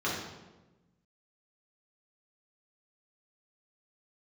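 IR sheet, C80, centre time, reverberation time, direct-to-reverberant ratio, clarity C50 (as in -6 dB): 4.5 dB, 59 ms, 1.1 s, -7.0 dB, 1.5 dB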